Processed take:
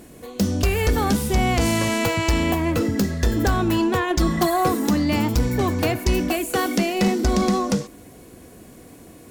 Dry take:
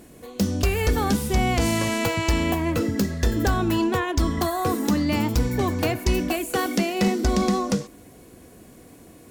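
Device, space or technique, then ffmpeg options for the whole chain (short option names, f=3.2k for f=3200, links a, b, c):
parallel distortion: -filter_complex "[0:a]asettb=1/sr,asplit=3[a][b][c];[a]atrim=end=4.104[d];[b]atrim=start=4.1:end=4.69,asetpts=PTS-STARTPTS,afade=t=in:d=0.004:c=qsin,afade=t=out:st=0.586:d=0.004:c=qsin,aecho=1:1:5.6:0.78,atrim=end_sample=26019[e];[c]atrim=start=4.686[f];[d][e]acrossfade=d=0.004:c1=hsin:c2=qsin[g];[g][f]acrossfade=d=0.004:c1=qsin:c2=hsin,asplit=2[h][i];[i]asoftclip=type=hard:threshold=-23.5dB,volume=-7.5dB[j];[h][j]amix=inputs=2:normalize=0"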